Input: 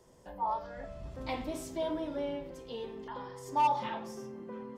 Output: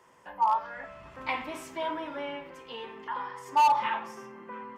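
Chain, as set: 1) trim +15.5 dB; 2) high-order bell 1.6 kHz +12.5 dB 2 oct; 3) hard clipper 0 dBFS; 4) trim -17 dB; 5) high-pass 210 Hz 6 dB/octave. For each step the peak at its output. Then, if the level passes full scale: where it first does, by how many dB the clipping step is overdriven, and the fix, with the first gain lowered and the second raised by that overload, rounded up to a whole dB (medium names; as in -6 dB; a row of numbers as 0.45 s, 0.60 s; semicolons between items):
-5.0 dBFS, +7.5 dBFS, 0.0 dBFS, -17.0 dBFS, -15.5 dBFS; step 2, 7.5 dB; step 1 +7.5 dB, step 4 -9 dB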